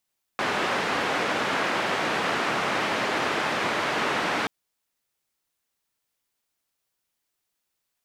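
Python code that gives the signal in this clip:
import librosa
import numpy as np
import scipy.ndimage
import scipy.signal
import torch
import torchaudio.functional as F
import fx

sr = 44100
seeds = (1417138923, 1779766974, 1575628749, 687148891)

y = fx.band_noise(sr, seeds[0], length_s=4.08, low_hz=190.0, high_hz=1800.0, level_db=-26.0)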